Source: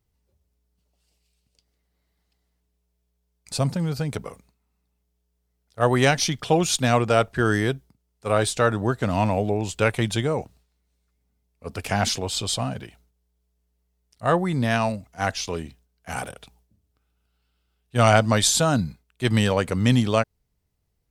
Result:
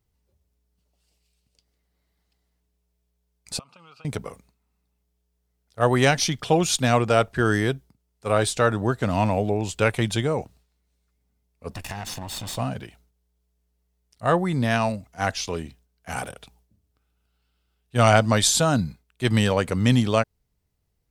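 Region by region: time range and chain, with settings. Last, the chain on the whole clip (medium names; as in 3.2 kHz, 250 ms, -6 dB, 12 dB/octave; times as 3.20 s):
3.59–4.05 s: two resonant band-passes 1.8 kHz, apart 1.1 oct + compression 10:1, threshold -44 dBFS
11.71–12.57 s: comb filter that takes the minimum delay 1.1 ms + compression, threshold -29 dBFS
whole clip: none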